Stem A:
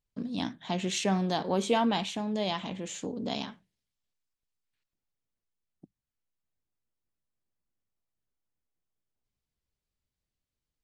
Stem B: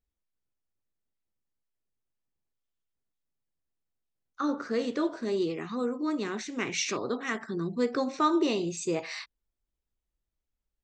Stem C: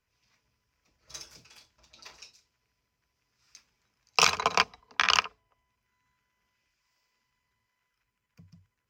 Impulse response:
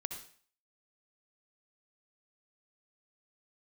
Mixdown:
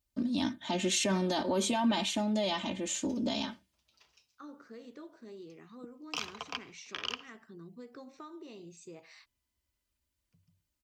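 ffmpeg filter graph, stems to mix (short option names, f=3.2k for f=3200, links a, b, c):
-filter_complex "[0:a]aecho=1:1:3.3:0.95,alimiter=limit=-21dB:level=0:latency=1:release=21,highshelf=f=5.4k:g=7,volume=-1.5dB[a];[1:a]acompressor=threshold=-27dB:ratio=6,volume=-18dB[b];[2:a]equalizer=f=3.1k:w=4.5:g=10,adelay=1950,volume=-19.5dB,asplit=2[c][d];[d]volume=-12.5dB[e];[3:a]atrim=start_sample=2205[f];[e][f]afir=irnorm=-1:irlink=0[g];[a][b][c][g]amix=inputs=4:normalize=0,highpass=55,lowshelf=f=130:g=7"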